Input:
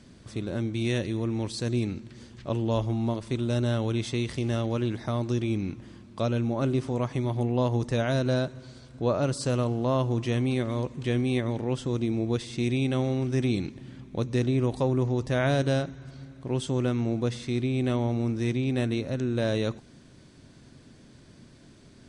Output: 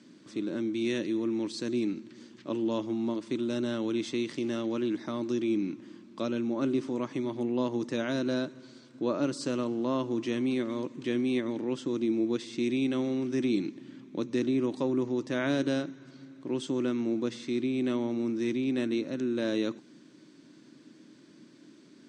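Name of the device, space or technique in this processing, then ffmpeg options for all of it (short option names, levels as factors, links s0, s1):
television speaker: -af "highpass=f=180:w=0.5412,highpass=f=180:w=1.3066,equalizer=f=310:t=q:w=4:g=10,equalizer=f=470:t=q:w=4:g=-3,equalizer=f=730:t=q:w=4:g=-8,lowpass=f=8000:w=0.5412,lowpass=f=8000:w=1.3066,volume=0.708"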